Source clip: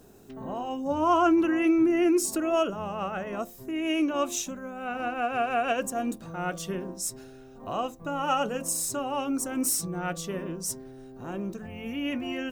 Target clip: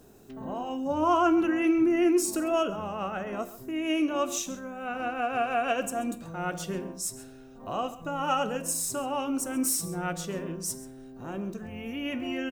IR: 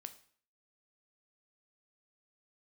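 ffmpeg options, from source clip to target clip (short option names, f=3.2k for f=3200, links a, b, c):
-filter_complex "[0:a]asplit=2[a][b];[b]adelay=134.1,volume=-16dB,highshelf=f=4k:g=-3.02[c];[a][c]amix=inputs=2:normalize=0,asplit=2[d][e];[1:a]atrim=start_sample=2205[f];[e][f]afir=irnorm=-1:irlink=0,volume=8.5dB[g];[d][g]amix=inputs=2:normalize=0,volume=-8.5dB"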